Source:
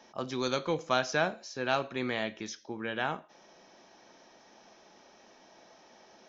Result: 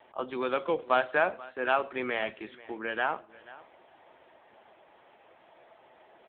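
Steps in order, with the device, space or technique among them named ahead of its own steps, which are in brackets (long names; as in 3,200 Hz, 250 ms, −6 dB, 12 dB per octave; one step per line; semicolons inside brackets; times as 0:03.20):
satellite phone (band-pass filter 360–3,300 Hz; single-tap delay 483 ms −19.5 dB; level +4.5 dB; AMR narrowband 6.7 kbit/s 8,000 Hz)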